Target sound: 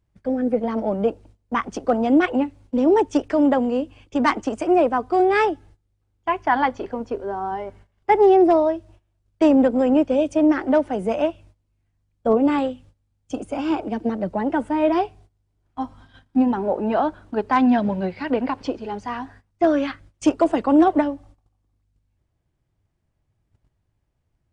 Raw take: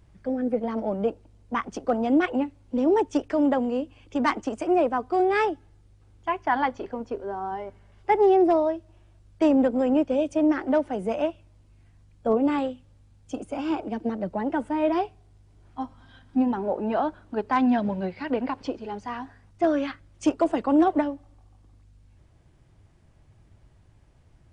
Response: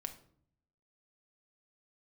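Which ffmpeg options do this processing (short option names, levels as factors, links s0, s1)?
-af "agate=range=0.112:threshold=0.00316:ratio=16:detection=peak,volume=1.68"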